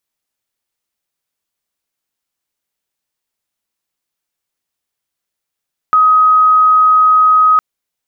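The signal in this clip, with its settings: tone sine 1.26 kHz -5.5 dBFS 1.66 s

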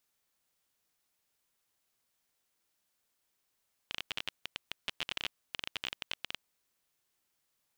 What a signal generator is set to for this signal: random clicks 20 per s -18 dBFS 2.44 s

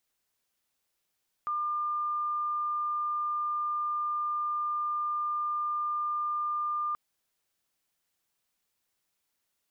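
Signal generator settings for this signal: tone sine 1.2 kHz -28 dBFS 5.48 s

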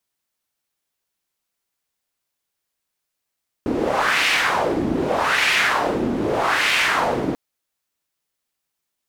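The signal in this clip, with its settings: wind-like swept noise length 3.69 s, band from 280 Hz, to 2.4 kHz, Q 2.1, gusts 3, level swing 4 dB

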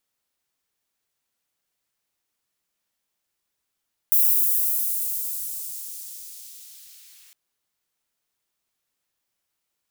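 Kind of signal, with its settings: swept filtered noise white, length 3.21 s highpass, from 14 kHz, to 1.9 kHz, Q 0.83, linear, gain ramp -39 dB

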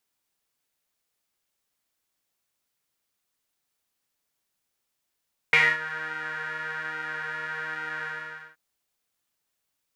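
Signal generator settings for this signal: synth patch with pulse-width modulation D#3, oscillator 2 saw, interval +19 st, detune 27 cents, oscillator 2 level -1 dB, sub -15 dB, filter bandpass, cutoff 1.6 kHz, Q 9.2, filter envelope 0.5 oct, filter sustain 5%, attack 1.2 ms, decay 0.24 s, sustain -17 dB, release 0.51 s, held 2.52 s, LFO 1.2 Hz, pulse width 44%, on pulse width 17%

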